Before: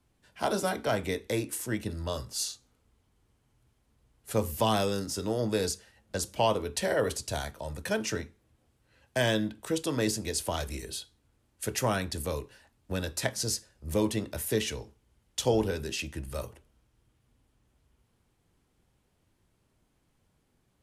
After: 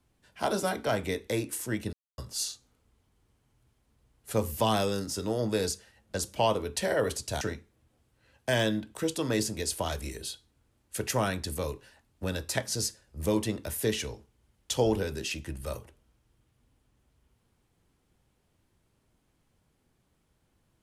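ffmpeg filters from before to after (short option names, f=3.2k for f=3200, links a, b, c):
-filter_complex "[0:a]asplit=4[a][b][c][d];[a]atrim=end=1.93,asetpts=PTS-STARTPTS,afade=t=out:st=1.926:d=0.004:c=hsin[e];[b]atrim=start=1.93:end=2.18,asetpts=PTS-STARTPTS,volume=0[f];[c]atrim=start=2.18:end=7.412,asetpts=PTS-STARTPTS,afade=t=in:d=0.004:c=hsin[g];[d]atrim=start=8.088[h];[e][f][g]concat=n=3:v=0:a=1[i];[i][h]acrossfade=d=0.004:c1=hsin:c2=hsin"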